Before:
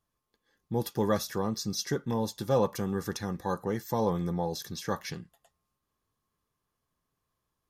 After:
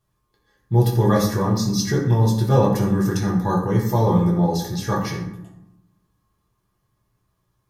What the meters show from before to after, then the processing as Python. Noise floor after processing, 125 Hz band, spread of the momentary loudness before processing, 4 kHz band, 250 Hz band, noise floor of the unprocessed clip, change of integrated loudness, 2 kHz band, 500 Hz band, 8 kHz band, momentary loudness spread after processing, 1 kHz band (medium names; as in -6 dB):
-72 dBFS, +17.0 dB, 7 LU, +6.5 dB, +12.5 dB, -83 dBFS, +11.5 dB, +9.0 dB, +8.0 dB, +7.0 dB, 7 LU, +9.5 dB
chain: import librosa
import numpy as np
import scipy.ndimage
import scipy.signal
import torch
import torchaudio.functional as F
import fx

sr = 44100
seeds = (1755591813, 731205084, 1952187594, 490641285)

y = fx.low_shelf(x, sr, hz=100.0, db=7.5)
y = fx.rev_fdn(y, sr, rt60_s=0.84, lf_ratio=1.45, hf_ratio=0.55, size_ms=49.0, drr_db=-3.5)
y = F.gain(torch.from_numpy(y), 3.5).numpy()